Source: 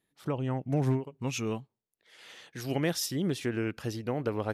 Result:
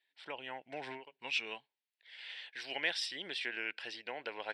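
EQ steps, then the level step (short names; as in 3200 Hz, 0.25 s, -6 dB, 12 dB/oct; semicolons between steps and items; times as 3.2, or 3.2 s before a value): resonant high-pass 1200 Hz, resonance Q 2; steep low-pass 7600 Hz 36 dB/oct; fixed phaser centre 2900 Hz, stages 4; +4.0 dB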